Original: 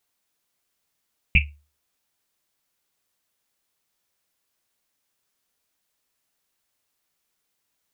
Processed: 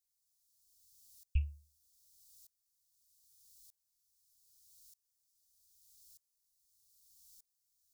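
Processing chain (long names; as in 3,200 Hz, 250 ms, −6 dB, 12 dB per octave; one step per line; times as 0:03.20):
inverse Chebyshev band-stop filter 250–2,000 Hz, stop band 50 dB
parametric band 210 Hz −6 dB 2.2 octaves
tremolo with a ramp in dB swelling 0.81 Hz, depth 27 dB
level +18 dB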